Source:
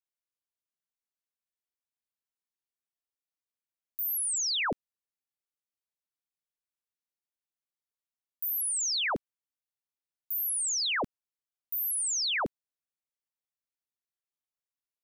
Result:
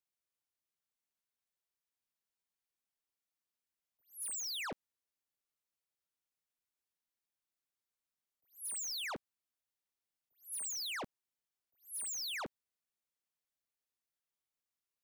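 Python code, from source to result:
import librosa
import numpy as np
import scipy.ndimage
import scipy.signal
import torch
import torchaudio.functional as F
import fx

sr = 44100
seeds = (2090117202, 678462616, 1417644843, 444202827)

y = 10.0 ** (-39.5 / 20.0) * np.tanh(x / 10.0 ** (-39.5 / 20.0))
y = fx.attack_slew(y, sr, db_per_s=220.0)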